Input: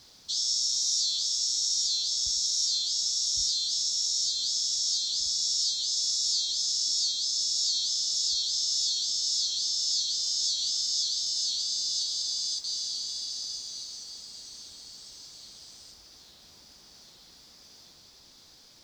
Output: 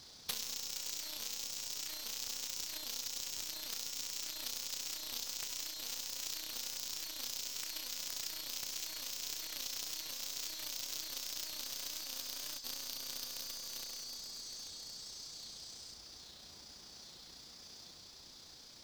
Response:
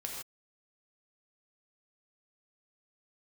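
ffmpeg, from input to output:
-filter_complex "[0:a]acompressor=threshold=-36dB:ratio=12,tremolo=f=30:d=0.333,aeval=exprs='0.0422*(cos(1*acos(clip(val(0)/0.0422,-1,1)))-cos(1*PI/2))+0.00299*(cos(2*acos(clip(val(0)/0.0422,-1,1)))-cos(2*PI/2))+0.0188*(cos(3*acos(clip(val(0)/0.0422,-1,1)))-cos(3*PI/2))':c=same,aeval=exprs='0.0266*(abs(mod(val(0)/0.0266+3,4)-2)-1)':c=same,asplit=2[a][b];[1:a]atrim=start_sample=2205[c];[b][c]afir=irnorm=-1:irlink=0,volume=-11dB[d];[a][d]amix=inputs=2:normalize=0,volume=9dB"

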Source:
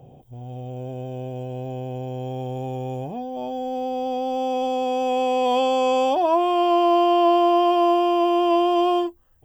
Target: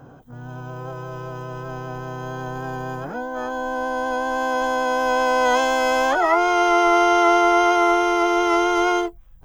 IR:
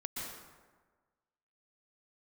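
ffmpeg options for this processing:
-filter_complex "[0:a]asubboost=boost=6:cutoff=54,asplit=3[a][b][c];[b]asetrate=55563,aresample=44100,atempo=0.793701,volume=-9dB[d];[c]asetrate=88200,aresample=44100,atempo=0.5,volume=-3dB[e];[a][d][e]amix=inputs=3:normalize=0"

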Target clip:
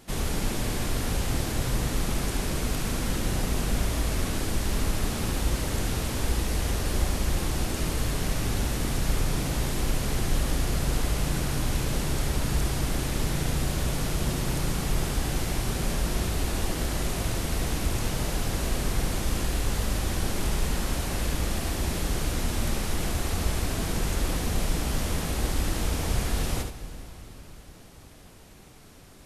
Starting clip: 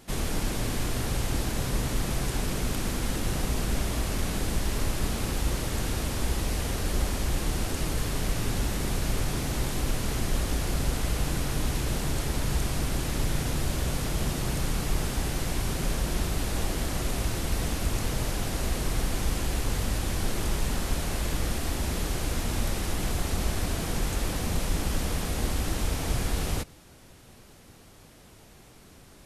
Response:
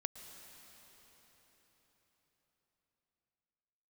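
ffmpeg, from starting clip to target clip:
-filter_complex "[0:a]asplit=2[a][b];[1:a]atrim=start_sample=2205,adelay=72[c];[b][c]afir=irnorm=-1:irlink=0,volume=-4dB[d];[a][d]amix=inputs=2:normalize=0"

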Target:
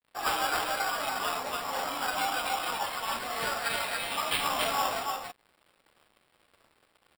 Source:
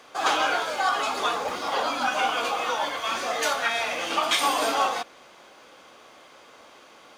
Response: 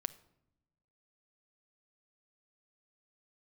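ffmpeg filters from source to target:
-af "adynamicequalizer=threshold=0.00631:dfrequency=420:dqfactor=1.9:tfrequency=420:tqfactor=1.9:attack=5:release=100:ratio=0.375:range=3:mode=cutabove:tftype=bell,flanger=delay=7.9:depth=4:regen=5:speed=0.32:shape=triangular,aecho=1:1:37.9|282.8:0.251|0.708,acrusher=samples=7:mix=1:aa=0.000001,aeval=exprs='sgn(val(0))*max(abs(val(0))-0.00376,0)':c=same,volume=-3dB"

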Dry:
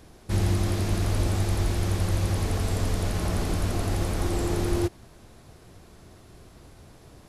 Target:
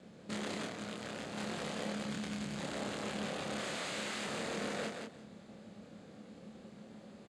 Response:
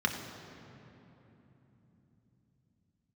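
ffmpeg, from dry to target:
-filter_complex "[0:a]asettb=1/sr,asplit=3[a][b][c];[a]atrim=end=1.924[d];[b]atrim=start=1.92:end=2.58,asetpts=PTS-STARTPTS,afade=t=in:d=0.004:c=qsin,afade=t=out:st=0.656:d=0.004:c=qsin,equalizer=f=550:t=o:w=1.8:g=-14[e];[c]atrim=start=2.576[f];[d][e]acrossfade=d=0.004:c1=hsin:c2=qsin[g];[g][f]acrossfade=d=0.004:c1=qsin:c2=hsin,acrossover=split=490|1200[h][i][j];[h]acompressor=threshold=-34dB:ratio=6[k];[j]alimiter=level_in=9.5dB:limit=-24dB:level=0:latency=1:release=271,volume=-9.5dB[l];[k][i][l]amix=inputs=3:normalize=0,asettb=1/sr,asplit=3[m][n][o];[m]atrim=end=3.604[p];[n]atrim=start=3.6:end=4.25,asetpts=PTS-STARTPTS,afade=t=in:d=0.004:c=qsin,afade=t=out:st=0.646:d=0.004:c=qsin,acontrast=71[q];[o]atrim=start=4.246[r];[p][q]acrossfade=d=0.004:c1=hsin:c2=qsin[s];[s][r]acrossfade=d=0.004:c1=qsin:c2=hsin,aeval=exprs='(mod(28.2*val(0)+1,2)-1)/28.2':c=same,aeval=exprs='val(0)*sin(2*PI*110*n/s)':c=same,asplit=2[t][u];[u]aecho=0:1:175|350|525:0.562|0.101|0.0182[v];[t][v]amix=inputs=2:normalize=0,asettb=1/sr,asplit=3[w][x][y];[w]atrim=end=0.674[z];[x]atrim=start=0.67:end=1.37,asetpts=PTS-STARTPTS,afade=t=in:d=0.004:c=qsin,afade=t=out:st=0.696:d=0.004:c=qsin,tremolo=f=120:d=0.919[aa];[y]atrim=start=1.366[ab];[z][aa]acrossfade=d=0.004:c1=hsin:c2=qsin[ac];[ac][ab]acrossfade=d=0.004:c1=qsin:c2=hsin,highpass=150,equalizer=f=210:t=q:w=4:g=9,equalizer=f=540:t=q:w=4:g=5,equalizer=f=960:t=q:w=4:g=-5,equalizer=f=5.6k:t=q:w=4:g=-10,lowpass=f=7.4k:w=0.5412,lowpass=f=7.4k:w=1.3066,asplit=2[ad][ae];[ae]adelay=28,volume=-2.5dB[af];[ad][af]amix=inputs=2:normalize=0,volume=-4dB"

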